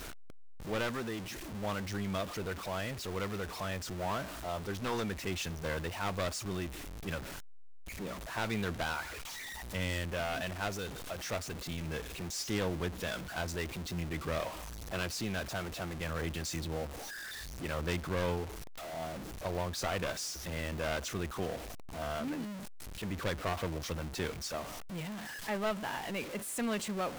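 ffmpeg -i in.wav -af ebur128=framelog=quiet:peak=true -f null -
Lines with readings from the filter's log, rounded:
Integrated loudness:
  I:         -37.4 LUFS
  Threshold: -47.5 LUFS
Loudness range:
  LRA:         1.6 LU
  Threshold: -57.5 LUFS
  LRA low:   -38.3 LUFS
  LRA high:  -36.8 LUFS
True peak:
  Peak:      -19.7 dBFS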